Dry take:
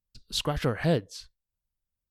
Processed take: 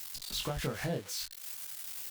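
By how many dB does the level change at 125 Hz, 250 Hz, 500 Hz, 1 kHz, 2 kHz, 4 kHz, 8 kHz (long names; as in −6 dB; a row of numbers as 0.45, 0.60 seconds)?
−9.0, −9.5, −9.0, −7.5, −5.0, −4.0, +2.0 decibels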